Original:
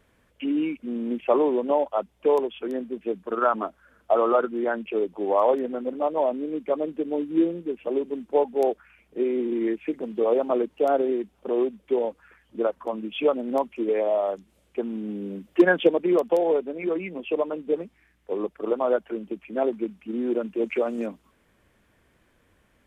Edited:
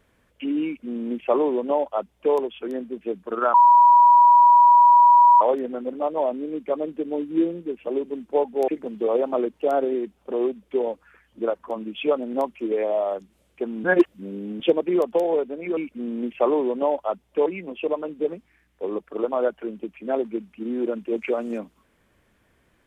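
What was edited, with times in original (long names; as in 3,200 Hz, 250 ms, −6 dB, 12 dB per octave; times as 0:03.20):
0:00.65–0:02.34: duplicate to 0:16.94
0:03.54–0:05.41: beep over 968 Hz −9.5 dBFS
0:08.68–0:09.85: remove
0:15.01–0:15.77: reverse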